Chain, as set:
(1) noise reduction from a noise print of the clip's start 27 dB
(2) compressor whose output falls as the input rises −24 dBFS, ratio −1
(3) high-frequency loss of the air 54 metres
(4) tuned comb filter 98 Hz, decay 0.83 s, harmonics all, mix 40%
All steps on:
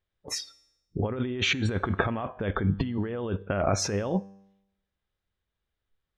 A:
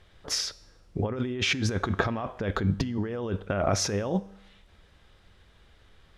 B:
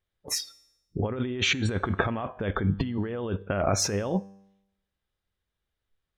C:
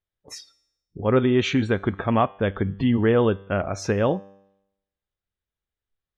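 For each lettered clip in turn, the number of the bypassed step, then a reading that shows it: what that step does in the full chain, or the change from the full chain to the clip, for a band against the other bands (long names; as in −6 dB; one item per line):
1, 8 kHz band +2.5 dB
3, 8 kHz band +3.5 dB
2, change in crest factor −6.0 dB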